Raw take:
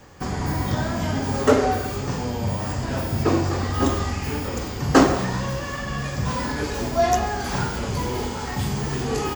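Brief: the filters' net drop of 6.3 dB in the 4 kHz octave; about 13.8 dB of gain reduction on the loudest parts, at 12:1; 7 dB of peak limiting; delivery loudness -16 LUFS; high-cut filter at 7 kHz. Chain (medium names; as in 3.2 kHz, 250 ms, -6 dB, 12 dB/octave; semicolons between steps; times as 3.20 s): low-pass 7 kHz; peaking EQ 4 kHz -8 dB; compression 12:1, threshold -24 dBFS; trim +14.5 dB; peak limiter -6.5 dBFS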